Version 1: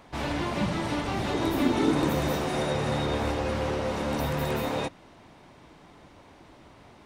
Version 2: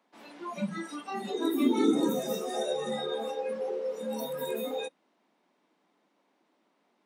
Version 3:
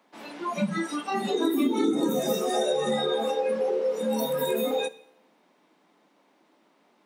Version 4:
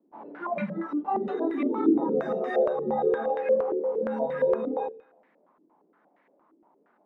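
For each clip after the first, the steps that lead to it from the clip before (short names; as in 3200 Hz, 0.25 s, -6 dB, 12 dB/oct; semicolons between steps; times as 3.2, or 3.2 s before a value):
spectral noise reduction 19 dB; steep high-pass 190 Hz 48 dB/oct
two-slope reverb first 0.59 s, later 1.9 s, from -25 dB, DRR 14.5 dB; compressor 6:1, threshold -29 dBFS, peak gain reduction 10.5 dB; gain +8 dB
stepped low-pass 8.6 Hz 340–1900 Hz; gain -5 dB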